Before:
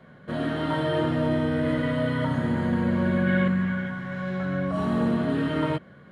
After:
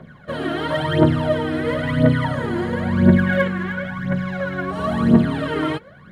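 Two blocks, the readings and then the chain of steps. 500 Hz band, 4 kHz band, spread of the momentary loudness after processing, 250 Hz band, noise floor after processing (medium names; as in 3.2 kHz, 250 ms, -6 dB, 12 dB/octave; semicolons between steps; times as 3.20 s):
+5.5 dB, +6.5 dB, 10 LU, +5.0 dB, -44 dBFS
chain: phaser 0.97 Hz, delay 3 ms, feedback 73%; trim +3 dB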